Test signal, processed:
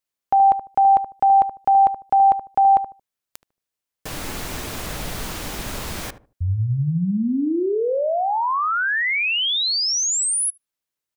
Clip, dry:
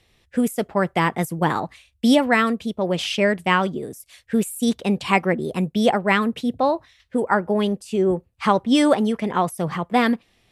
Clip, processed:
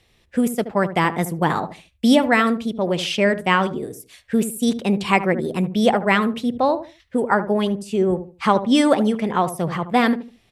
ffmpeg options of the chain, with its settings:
-filter_complex "[0:a]asplit=2[a][b];[b]adelay=75,lowpass=f=880:p=1,volume=-10dB,asplit=2[c][d];[d]adelay=75,lowpass=f=880:p=1,volume=0.28,asplit=2[e][f];[f]adelay=75,lowpass=f=880:p=1,volume=0.28[g];[a][c][e][g]amix=inputs=4:normalize=0,volume=1dB"

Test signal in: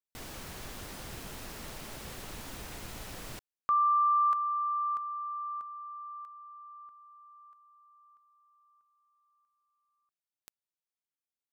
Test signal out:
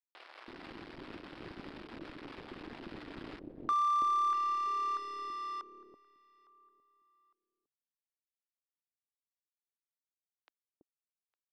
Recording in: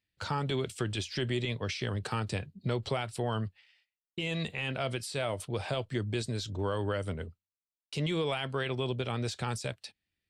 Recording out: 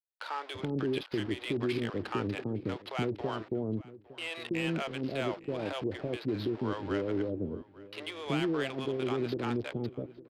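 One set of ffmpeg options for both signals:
-filter_complex "[0:a]aresample=11025,aeval=exprs='val(0)*gte(abs(val(0)),0.01)':c=same,aresample=44100,adynamicsmooth=sensitivity=6:basefreq=2.2k,lowshelf=f=160:g=-7.5,aeval=exprs='0.0891*(cos(1*acos(clip(val(0)/0.0891,-1,1)))-cos(1*PI/2))+0.001*(cos(4*acos(clip(val(0)/0.0891,-1,1)))-cos(4*PI/2))':c=same,equalizer=f=310:t=o:w=0.95:g=12,asplit=2[a][b];[b]adelay=858,lowpass=f=2.7k:p=1,volume=-21dB,asplit=2[c][d];[d]adelay=858,lowpass=f=2.7k:p=1,volume=0.29[e];[c][e]amix=inputs=2:normalize=0[f];[a][f]amix=inputs=2:normalize=0,acompressor=threshold=-28dB:ratio=6:attack=13:release=34:knee=1:detection=rms,acrossover=split=590[g][h];[g]adelay=330[i];[i][h]amix=inputs=2:normalize=0"

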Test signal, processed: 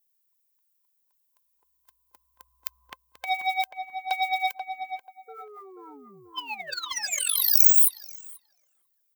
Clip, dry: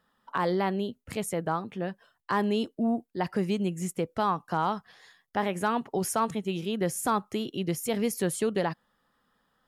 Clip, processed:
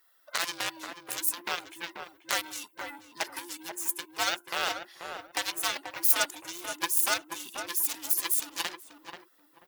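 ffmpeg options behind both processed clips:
-filter_complex "[0:a]afftfilt=real='real(if(between(b,1,1008),(2*floor((b-1)/24)+1)*24-b,b),0)':imag='imag(if(between(b,1,1008),(2*floor((b-1)/24)+1)*24-b,b),0)*if(between(b,1,1008),-1,1)':win_size=2048:overlap=0.75,highpass=420,asplit=2[a][b];[b]acompressor=threshold=-38dB:ratio=4,volume=-2dB[c];[a][c]amix=inputs=2:normalize=0,aphaser=in_gain=1:out_gain=1:delay=3.6:decay=0.35:speed=1.6:type=triangular,aeval=exprs='0.237*(cos(1*acos(clip(val(0)/0.237,-1,1)))-cos(1*PI/2))+0.0596*(cos(7*acos(clip(val(0)/0.237,-1,1)))-cos(7*PI/2))':c=same,aemphasis=mode=production:type=riaa,asplit=2[d][e];[e]adelay=485,lowpass=f=1.1k:p=1,volume=-5dB,asplit=2[f][g];[g]adelay=485,lowpass=f=1.1k:p=1,volume=0.28,asplit=2[h][i];[i]adelay=485,lowpass=f=1.1k:p=1,volume=0.28,asplit=2[j][k];[k]adelay=485,lowpass=f=1.1k:p=1,volume=0.28[l];[f][h][j][l]amix=inputs=4:normalize=0[m];[d][m]amix=inputs=2:normalize=0,volume=-5dB"

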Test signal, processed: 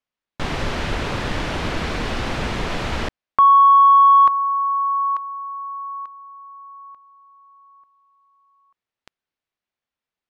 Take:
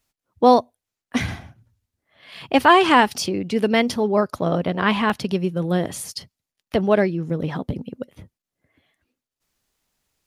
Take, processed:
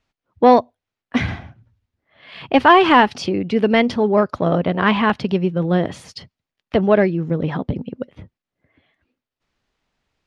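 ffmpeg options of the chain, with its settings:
-af "acontrast=20,lowpass=3.4k,volume=-1dB"

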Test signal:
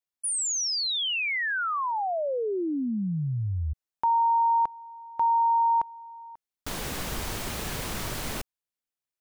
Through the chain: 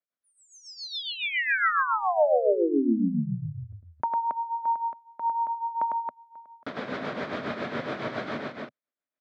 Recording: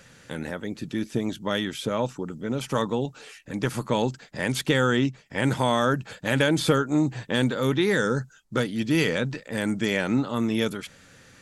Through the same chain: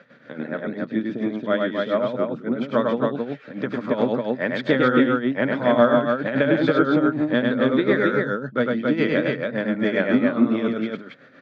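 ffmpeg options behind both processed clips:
-af "tremolo=f=7.2:d=0.73,highpass=f=150:w=0.5412,highpass=f=150:w=1.3066,equalizer=f=170:t=q:w=4:g=-4,equalizer=f=250:t=q:w=4:g=4,equalizer=f=610:t=q:w=4:g=7,equalizer=f=870:t=q:w=4:g=-6,equalizer=f=1.4k:t=q:w=4:g=3,equalizer=f=2.8k:t=q:w=4:g=-10,lowpass=f=3.2k:w=0.5412,lowpass=f=3.2k:w=1.3066,aecho=1:1:102|274.1:0.708|0.708,volume=3.5dB"

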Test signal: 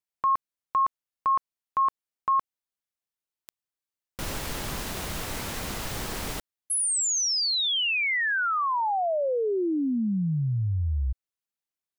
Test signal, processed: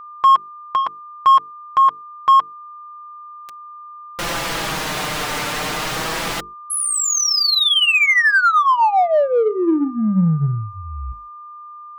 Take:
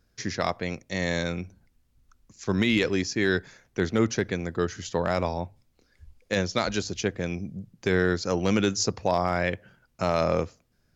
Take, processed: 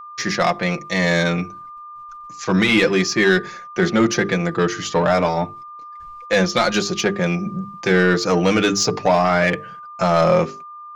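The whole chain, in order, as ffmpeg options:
-filter_complex "[0:a]bandreject=f=50:t=h:w=6,bandreject=f=100:t=h:w=6,bandreject=f=150:t=h:w=6,bandreject=f=200:t=h:w=6,bandreject=f=250:t=h:w=6,bandreject=f=300:t=h:w=6,bandreject=f=350:t=h:w=6,bandreject=f=400:t=h:w=6,bandreject=f=450:t=h:w=6,agate=range=-33dB:threshold=-59dB:ratio=3:release=61:detection=rms,adynamicequalizer=threshold=0.00891:dfrequency=160:dqfactor=1:tfrequency=160:tqfactor=1:attack=5:release=100:ratio=0.375:range=3:mode=boostabove:tftype=bell,asplit=2[a][b];[b]highpass=f=720:p=1,volume=14dB,asoftclip=type=tanh:threshold=-9dB[c];[a][c]amix=inputs=2:normalize=0,lowpass=f=3.5k:p=1,volume=-6dB,flanger=delay=5.4:depth=1.3:regen=-8:speed=0.28:shape=sinusoidal,aeval=exprs='val(0)+0.00631*sin(2*PI*1200*n/s)':c=same,asplit=2[d][e];[e]asoftclip=type=tanh:threshold=-29dB,volume=-9dB[f];[d][f]amix=inputs=2:normalize=0,volume=7dB"

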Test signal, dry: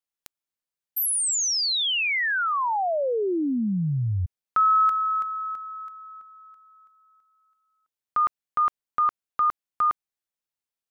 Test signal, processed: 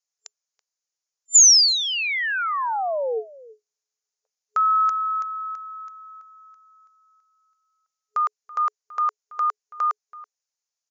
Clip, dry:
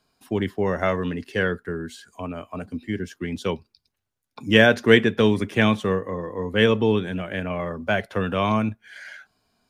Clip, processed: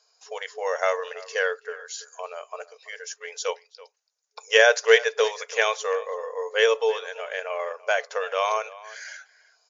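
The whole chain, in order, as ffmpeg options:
-filter_complex "[0:a]asplit=2[a][b];[b]adelay=330,highpass=300,lowpass=3.4k,asoftclip=type=hard:threshold=-10dB,volume=-19dB[c];[a][c]amix=inputs=2:normalize=0,afftfilt=real='re*between(b*sr/4096,420,7200)':imag='im*between(b*sr/4096,420,7200)':win_size=4096:overlap=0.75,aexciter=amount=7.3:drive=1.3:freq=4.9k"

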